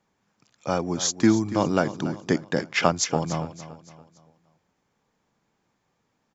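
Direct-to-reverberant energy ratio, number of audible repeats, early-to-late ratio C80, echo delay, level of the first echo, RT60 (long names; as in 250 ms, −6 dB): no reverb audible, 3, no reverb audible, 284 ms, −14.0 dB, no reverb audible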